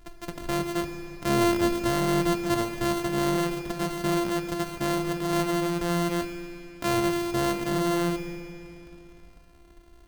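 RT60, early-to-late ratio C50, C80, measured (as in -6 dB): 2.9 s, 6.5 dB, 7.0 dB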